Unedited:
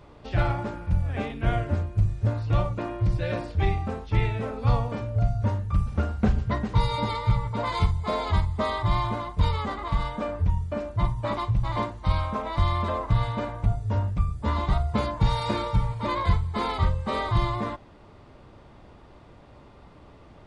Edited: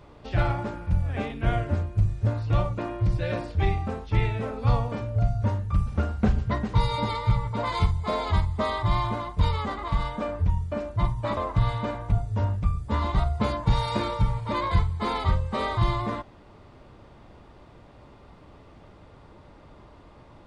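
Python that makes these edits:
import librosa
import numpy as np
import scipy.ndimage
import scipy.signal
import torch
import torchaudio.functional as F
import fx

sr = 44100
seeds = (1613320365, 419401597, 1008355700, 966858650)

y = fx.edit(x, sr, fx.cut(start_s=11.37, length_s=1.54), tone=tone)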